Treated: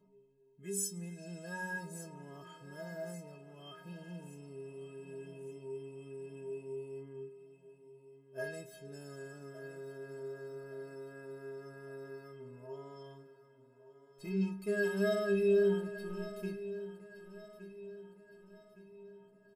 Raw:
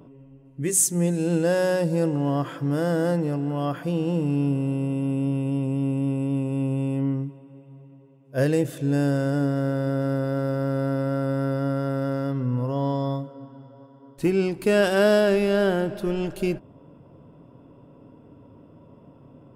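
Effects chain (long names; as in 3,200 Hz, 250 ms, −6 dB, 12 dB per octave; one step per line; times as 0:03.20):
stiff-string resonator 190 Hz, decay 0.72 s, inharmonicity 0.03
repeating echo 1,165 ms, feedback 45%, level −14.5 dB
level +1 dB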